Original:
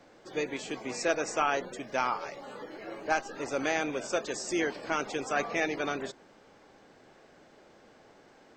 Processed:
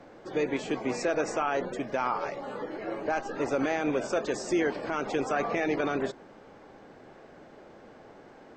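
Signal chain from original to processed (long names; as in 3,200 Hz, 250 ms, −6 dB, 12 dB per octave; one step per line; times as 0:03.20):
high-shelf EQ 2,600 Hz −12 dB
brickwall limiter −25.5 dBFS, peak gain reduction 10 dB
level +7.5 dB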